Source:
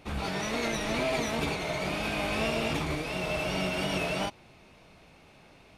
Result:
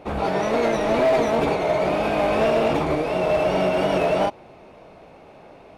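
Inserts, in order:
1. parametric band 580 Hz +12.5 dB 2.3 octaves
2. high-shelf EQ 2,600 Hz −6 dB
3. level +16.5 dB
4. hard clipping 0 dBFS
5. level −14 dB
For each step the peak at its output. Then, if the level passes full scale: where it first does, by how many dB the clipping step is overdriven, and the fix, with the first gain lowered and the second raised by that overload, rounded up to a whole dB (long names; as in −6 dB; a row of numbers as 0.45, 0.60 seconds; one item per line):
−9.0, −9.5, +7.0, 0.0, −14.0 dBFS
step 3, 7.0 dB
step 3 +9.5 dB, step 5 −7 dB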